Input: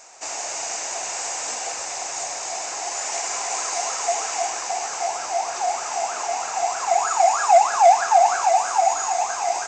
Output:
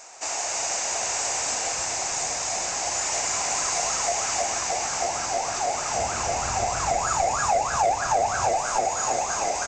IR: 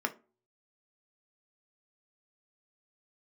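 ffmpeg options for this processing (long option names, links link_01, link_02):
-filter_complex "[0:a]acompressor=threshold=-22dB:ratio=2.5,asettb=1/sr,asplit=3[link_01][link_02][link_03];[link_01]atrim=end=5.944[link_04];[link_02]atrim=start=5.94:end=8.55,asetpts=PTS-STARTPTS,afade=type=in:duration=0.004:curve=qsin,afade=type=out:start_time=2.606:duration=0.004:curve=qsin,equalizer=frequency=78:width_type=o:width=2.1:gain=15[link_05];[link_03]atrim=start=8.546[link_06];[link_04][link_05]acrossfade=duration=0.004:curve1=hsin:curve2=qsin[link_07];[link_07][link_06]acrossfade=duration=0.004:curve1=qsin:curve2=hsin,acontrast=76,asubboost=boost=8.5:cutoff=170,asplit=7[link_08][link_09][link_10][link_11][link_12][link_13][link_14];[link_09]adelay=317,afreqshift=-110,volume=-8dB[link_15];[link_10]adelay=634,afreqshift=-220,volume=-13.4dB[link_16];[link_11]adelay=951,afreqshift=-330,volume=-18.7dB[link_17];[link_12]adelay=1268,afreqshift=-440,volume=-24.1dB[link_18];[link_13]adelay=1585,afreqshift=-550,volume=-29.4dB[link_19];[link_14]adelay=1902,afreqshift=-660,volume=-34.8dB[link_20];[link_08][link_15][link_16][link_17][link_18][link_19][link_20]amix=inputs=7:normalize=0,volume=-5.5dB"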